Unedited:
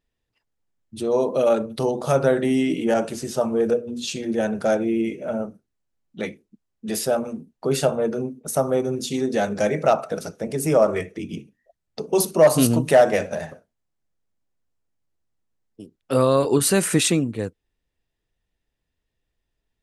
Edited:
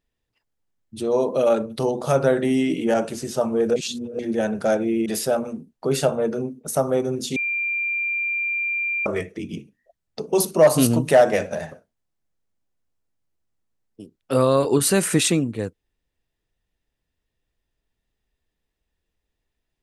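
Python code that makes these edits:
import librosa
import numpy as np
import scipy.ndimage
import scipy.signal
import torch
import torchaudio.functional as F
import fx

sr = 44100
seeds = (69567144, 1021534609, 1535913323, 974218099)

y = fx.edit(x, sr, fx.reverse_span(start_s=3.76, length_s=0.43),
    fx.cut(start_s=5.06, length_s=1.8),
    fx.bleep(start_s=9.16, length_s=1.7, hz=2380.0, db=-21.5), tone=tone)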